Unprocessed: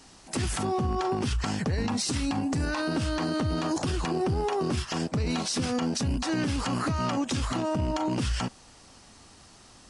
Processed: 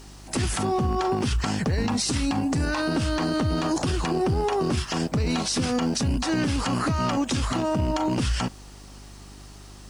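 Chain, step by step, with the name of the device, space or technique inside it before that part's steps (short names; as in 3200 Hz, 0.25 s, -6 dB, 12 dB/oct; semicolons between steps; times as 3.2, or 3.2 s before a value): video cassette with head-switching buzz (buzz 50 Hz, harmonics 8, -49 dBFS -6 dB/oct; white noise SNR 39 dB); gain +3.5 dB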